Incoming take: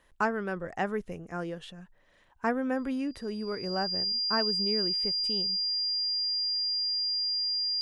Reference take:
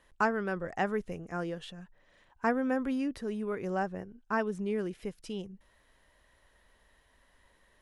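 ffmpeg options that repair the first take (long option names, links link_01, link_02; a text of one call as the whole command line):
ffmpeg -i in.wav -af "bandreject=frequency=4800:width=30" out.wav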